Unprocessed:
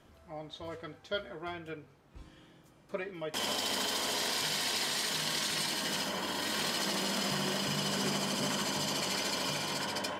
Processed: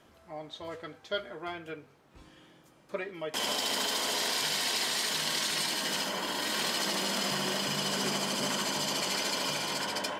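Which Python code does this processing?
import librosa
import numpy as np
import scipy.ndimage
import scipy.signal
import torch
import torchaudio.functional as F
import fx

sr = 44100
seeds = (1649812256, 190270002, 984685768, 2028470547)

y = fx.low_shelf(x, sr, hz=140.0, db=-10.5)
y = y * 10.0 ** (2.5 / 20.0)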